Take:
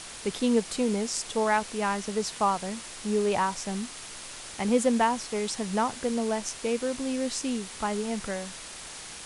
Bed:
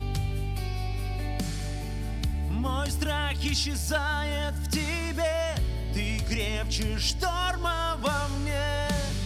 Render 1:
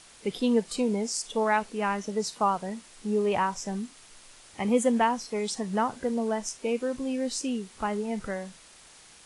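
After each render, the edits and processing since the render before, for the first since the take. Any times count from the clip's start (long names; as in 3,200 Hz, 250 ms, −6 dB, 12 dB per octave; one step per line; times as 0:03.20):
noise reduction from a noise print 11 dB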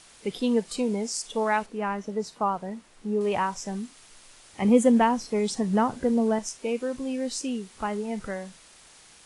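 0:01.66–0:03.21: high-shelf EQ 2,600 Hz −10 dB
0:04.62–0:06.39: low-shelf EQ 450 Hz +8 dB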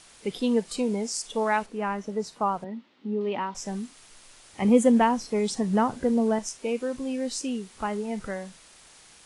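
0:02.64–0:03.55: loudspeaker in its box 240–3,800 Hz, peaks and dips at 250 Hz +10 dB, 470 Hz −5 dB, 700 Hz −8 dB, 1,100 Hz −5 dB, 1,600 Hz −7 dB, 2,400 Hz −4 dB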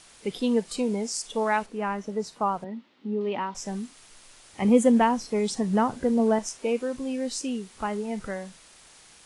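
0:06.19–0:06.82: parametric band 740 Hz +3 dB 2.9 octaves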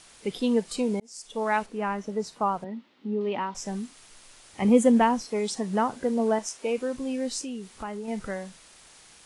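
0:01.00–0:01.57: fade in
0:05.21–0:06.78: low-shelf EQ 160 Hz −12 dB
0:07.41–0:08.08: downward compressor 2 to 1, threshold −35 dBFS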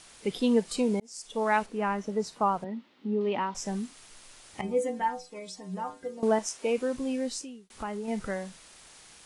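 0:04.61–0:06.23: stiff-string resonator 91 Hz, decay 0.36 s, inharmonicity 0.008
0:06.95–0:07.70: fade out equal-power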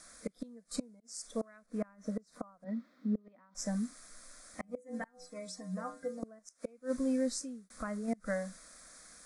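gate with flip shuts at −21 dBFS, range −28 dB
phaser with its sweep stopped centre 580 Hz, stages 8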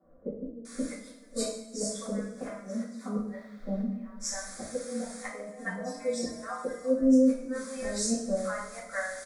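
three-band delay without the direct sound mids, lows, highs 30/650 ms, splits 180/700 Hz
coupled-rooms reverb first 0.56 s, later 2.3 s, DRR −9 dB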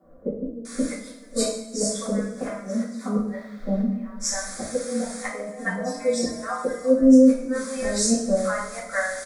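level +8 dB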